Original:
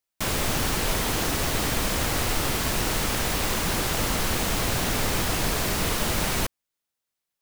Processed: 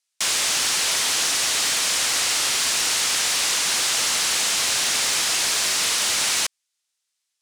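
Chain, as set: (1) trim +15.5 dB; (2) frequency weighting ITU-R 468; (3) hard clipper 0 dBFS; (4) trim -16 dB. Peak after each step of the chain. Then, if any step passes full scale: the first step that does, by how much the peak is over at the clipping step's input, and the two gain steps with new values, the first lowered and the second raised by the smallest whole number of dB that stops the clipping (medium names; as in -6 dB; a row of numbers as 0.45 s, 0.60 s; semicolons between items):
+3.5 dBFS, +8.0 dBFS, 0.0 dBFS, -16.0 dBFS; step 1, 8.0 dB; step 1 +7.5 dB, step 4 -8 dB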